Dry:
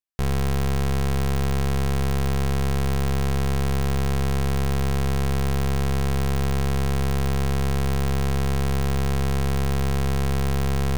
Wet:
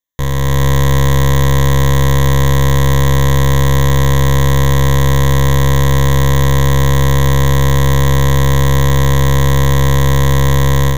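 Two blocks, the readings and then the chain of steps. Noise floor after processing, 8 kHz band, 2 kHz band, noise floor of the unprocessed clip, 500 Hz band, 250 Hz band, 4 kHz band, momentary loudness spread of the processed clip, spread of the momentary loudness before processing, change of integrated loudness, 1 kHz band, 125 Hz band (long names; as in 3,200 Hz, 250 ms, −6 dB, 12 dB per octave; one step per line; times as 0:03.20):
−12 dBFS, +14.5 dB, +14.0 dB, −21 dBFS, +12.0 dB, +10.0 dB, +13.5 dB, 0 LU, 0 LU, +12.5 dB, +13.0 dB, +13.5 dB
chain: EQ curve with evenly spaced ripples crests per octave 1.1, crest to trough 15 dB
automatic gain control gain up to 6 dB
level +5 dB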